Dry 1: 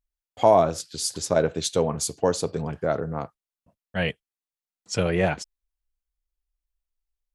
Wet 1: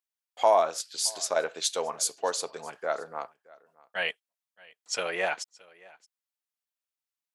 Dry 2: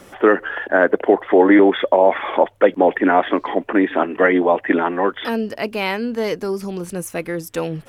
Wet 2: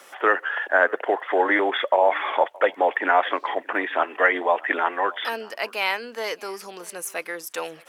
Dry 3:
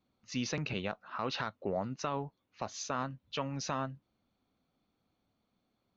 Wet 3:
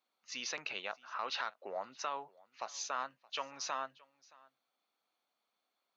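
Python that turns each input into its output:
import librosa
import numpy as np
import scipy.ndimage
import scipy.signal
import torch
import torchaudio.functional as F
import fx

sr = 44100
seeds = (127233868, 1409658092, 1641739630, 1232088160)

y = scipy.signal.sosfilt(scipy.signal.butter(2, 760.0, 'highpass', fs=sr, output='sos'), x)
y = y + 10.0 ** (-24.0 / 20.0) * np.pad(y, (int(622 * sr / 1000.0), 0))[:len(y)]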